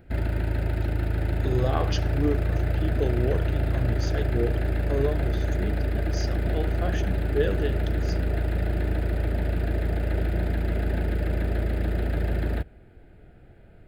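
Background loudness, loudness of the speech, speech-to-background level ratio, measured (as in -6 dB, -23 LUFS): -27.0 LUFS, -31.5 LUFS, -4.5 dB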